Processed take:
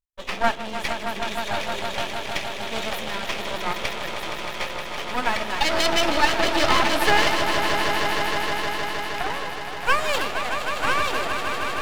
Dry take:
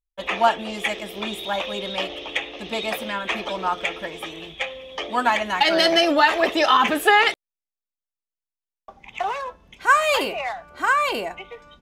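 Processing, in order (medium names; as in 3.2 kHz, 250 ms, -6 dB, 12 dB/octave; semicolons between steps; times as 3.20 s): echo with a slow build-up 156 ms, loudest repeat 5, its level -9 dB; half-wave rectifier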